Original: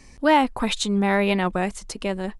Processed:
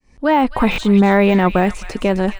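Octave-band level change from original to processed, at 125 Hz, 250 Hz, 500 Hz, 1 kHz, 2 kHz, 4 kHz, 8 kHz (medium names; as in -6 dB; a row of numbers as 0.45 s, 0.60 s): +9.5 dB, +8.5 dB, +7.5 dB, +5.0 dB, +4.5 dB, -0.5 dB, no reading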